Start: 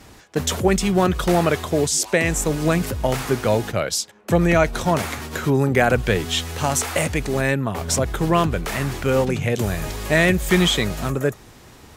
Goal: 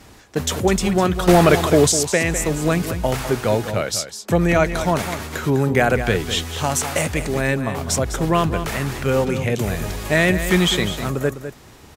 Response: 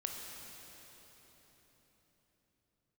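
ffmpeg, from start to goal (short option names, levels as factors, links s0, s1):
-filter_complex "[0:a]asettb=1/sr,asplit=3[s0][s1][s2];[s0]atrim=end=1.284[s3];[s1]atrim=start=1.28:end=1.92,asetpts=PTS-STARTPTS,afade=t=in:d=0.004:c=qsin,afade=t=out:st=0.636:d=0.004:c=qsin,acontrast=79[s4];[s2]atrim=start=1.916[s5];[s3][s4]acrossfade=d=0.004:c1=hsin:c2=qsin[s6];[s6][s5]acrossfade=d=0.004:c1=qsin:c2=hsin,aecho=1:1:203:0.299"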